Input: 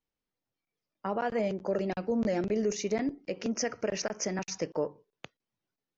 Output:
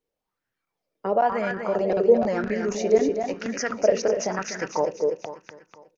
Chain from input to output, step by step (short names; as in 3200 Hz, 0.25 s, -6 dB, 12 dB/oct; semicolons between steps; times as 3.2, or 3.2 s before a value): on a send: feedback echo 0.246 s, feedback 48%, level -6.5 dB; on the sum: LFO bell 0.99 Hz 430–1700 Hz +16 dB; gain +1 dB